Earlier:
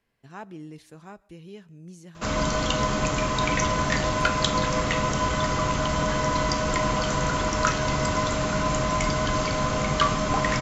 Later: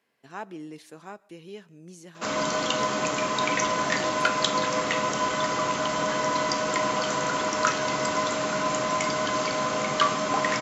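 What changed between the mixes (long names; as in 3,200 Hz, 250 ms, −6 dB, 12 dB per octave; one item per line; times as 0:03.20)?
speech +3.5 dB
master: add high-pass filter 260 Hz 12 dB per octave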